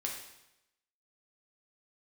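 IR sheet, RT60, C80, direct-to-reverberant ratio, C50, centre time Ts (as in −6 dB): 0.90 s, 7.0 dB, −1.0 dB, 4.0 dB, 38 ms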